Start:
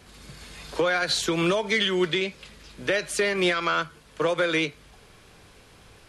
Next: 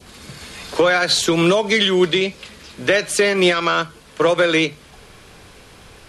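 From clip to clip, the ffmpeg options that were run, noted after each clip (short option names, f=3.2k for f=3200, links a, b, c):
-af "bandreject=f=50:t=h:w=6,bandreject=f=100:t=h:w=6,bandreject=f=150:t=h:w=6,adynamicequalizer=threshold=0.0112:dfrequency=1700:dqfactor=1.3:tfrequency=1700:tqfactor=1.3:attack=5:release=100:ratio=0.375:range=2.5:mode=cutabove:tftype=bell,volume=8.5dB"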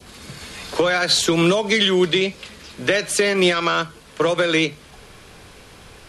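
-filter_complex "[0:a]acrossover=split=260|3000[a][b][c];[b]acompressor=threshold=-16dB:ratio=6[d];[a][d][c]amix=inputs=3:normalize=0"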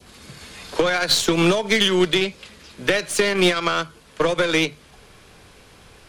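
-af "aeval=exprs='0.668*(cos(1*acos(clip(val(0)/0.668,-1,1)))-cos(1*PI/2))+0.0266*(cos(6*acos(clip(val(0)/0.668,-1,1)))-cos(6*PI/2))+0.0376*(cos(7*acos(clip(val(0)/0.668,-1,1)))-cos(7*PI/2))':c=same"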